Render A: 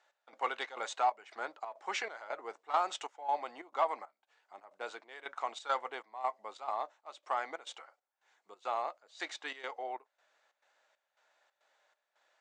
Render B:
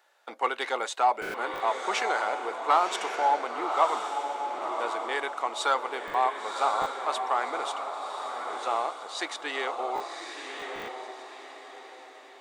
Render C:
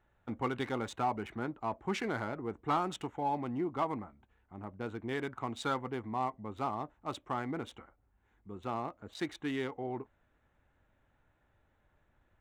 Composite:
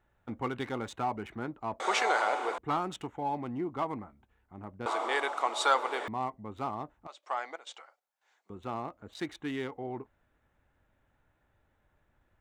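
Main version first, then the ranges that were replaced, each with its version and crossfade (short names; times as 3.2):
C
1.8–2.58 from B
4.86–6.08 from B
7.07–8.5 from A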